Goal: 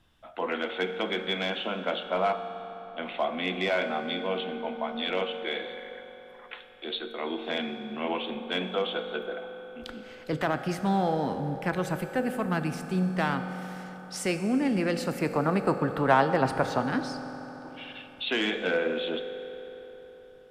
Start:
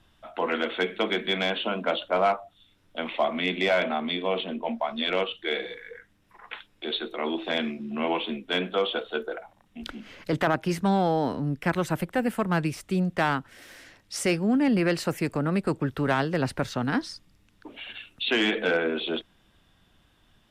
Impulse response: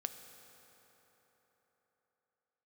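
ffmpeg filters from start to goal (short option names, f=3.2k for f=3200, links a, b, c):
-filter_complex "[0:a]asettb=1/sr,asplit=3[a][b][c];[a]atrim=end=2.334[d];[b]atrim=start=2.33:end=3.03,asetpts=PTS-STARTPTS,afade=t=in:d=0.004:c=qsin,afade=t=out:st=0.696:d=0.004:c=qsin,lowpass=3.3k[e];[c]atrim=start=3.026[f];[d][e]acrossfade=d=0.004:c1=hsin:c2=qsin[g];[g][f]acrossfade=d=0.004:c1=qsin:c2=hsin,asettb=1/sr,asplit=3[h][i][j];[h]atrim=end=15.194[k];[i]atrim=start=15.19:end=16.81,asetpts=PTS-STARTPTS,afade=t=in:d=0.004:c=qsin,afade=t=out:st=1.616:d=0.004:c=qsin,equalizer=f=850:w=0.75:g=10.5[l];[j]atrim=start=16.806[m];[k][l]acrossfade=d=0.004:c1=hsin:c2=qsin[n];[n][m]acrossfade=d=0.004:c1=qsin:c2=hsin[o];[1:a]atrim=start_sample=2205[p];[o][p]afir=irnorm=-1:irlink=0,volume=-2dB"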